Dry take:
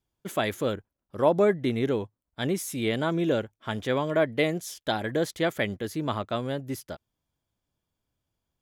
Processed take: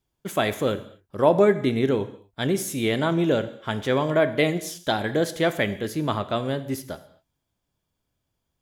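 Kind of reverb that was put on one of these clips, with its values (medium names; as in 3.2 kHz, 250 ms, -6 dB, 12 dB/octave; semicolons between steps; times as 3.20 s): gated-style reverb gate 280 ms falling, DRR 10.5 dB; trim +3.5 dB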